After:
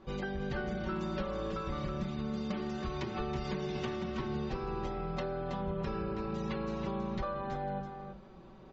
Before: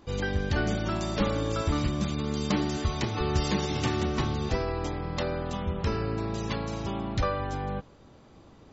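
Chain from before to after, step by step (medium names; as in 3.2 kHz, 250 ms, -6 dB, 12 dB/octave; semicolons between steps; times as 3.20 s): low-pass 5.5 kHz 12 dB/octave; treble shelf 3.8 kHz -10.5 dB; hum notches 50/100/150/200 Hz; comb 5.3 ms, depth 89%; compression, threshold -31 dBFS, peak gain reduction 12 dB; delay 323 ms -7.5 dB; trim -2.5 dB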